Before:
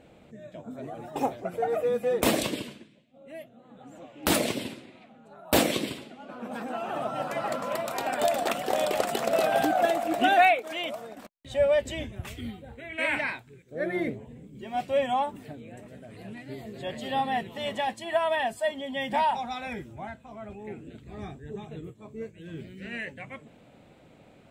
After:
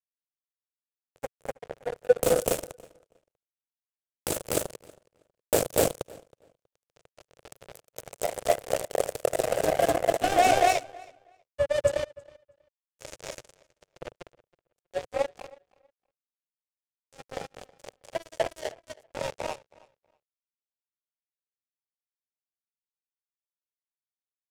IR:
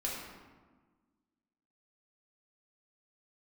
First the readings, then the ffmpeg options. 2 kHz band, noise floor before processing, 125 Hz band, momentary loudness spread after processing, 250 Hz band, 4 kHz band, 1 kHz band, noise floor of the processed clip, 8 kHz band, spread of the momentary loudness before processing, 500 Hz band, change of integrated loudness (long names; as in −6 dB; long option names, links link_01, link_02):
−6.5 dB, −56 dBFS, −2.5 dB, 22 LU, −7.5 dB, −5.0 dB, −3.5 dB, below −85 dBFS, +2.5 dB, 19 LU, −0.5 dB, 0.0 dB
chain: -filter_complex "[0:a]asplit=2[link_01][link_02];[link_02]adelay=42,volume=-13dB[link_03];[link_01][link_03]amix=inputs=2:normalize=0,asplit=2[link_04][link_05];[link_05]aecho=0:1:198.3|247.8:0.316|1[link_06];[link_04][link_06]amix=inputs=2:normalize=0,asoftclip=type=tanh:threshold=-15dB,acrusher=bits=2:mix=0:aa=0.5,equalizer=frequency=125:width_type=o:width=1:gain=5,equalizer=frequency=250:width_type=o:width=1:gain=-9,equalizer=frequency=500:width_type=o:width=1:gain=11,equalizer=frequency=1000:width_type=o:width=1:gain=-6,equalizer=frequency=2000:width_type=o:width=1:gain=-5,equalizer=frequency=4000:width_type=o:width=1:gain=-6,equalizer=frequency=8000:width_type=o:width=1:gain=5,asplit=2[link_07][link_08];[link_08]adelay=321,lowpass=frequency=4800:poles=1,volume=-23dB,asplit=2[link_09][link_10];[link_10]adelay=321,lowpass=frequency=4800:poles=1,volume=0.19[link_11];[link_09][link_11]amix=inputs=2:normalize=0[link_12];[link_07][link_12]amix=inputs=2:normalize=0,volume=4dB"